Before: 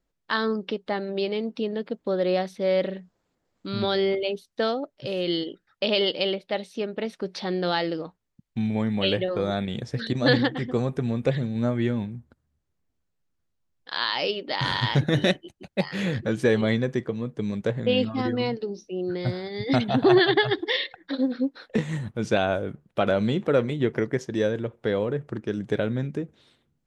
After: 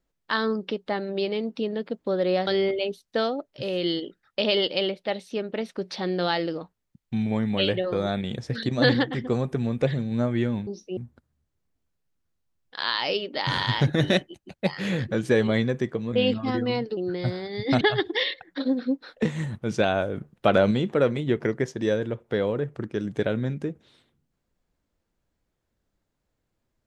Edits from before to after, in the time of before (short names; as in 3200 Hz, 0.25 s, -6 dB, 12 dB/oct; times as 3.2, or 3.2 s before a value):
2.47–3.91 cut
17.27–17.84 cut
18.68–18.98 move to 12.11
19.82–20.34 cut
22.7–23.24 gain +3.5 dB